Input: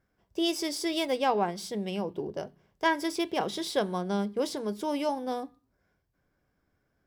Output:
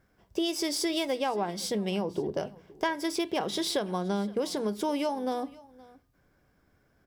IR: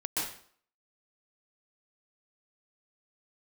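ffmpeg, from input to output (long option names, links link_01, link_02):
-filter_complex "[0:a]acompressor=threshold=-34dB:ratio=6,asplit=2[link_01][link_02];[link_02]aecho=0:1:519:0.0794[link_03];[link_01][link_03]amix=inputs=2:normalize=0,volume=7.5dB"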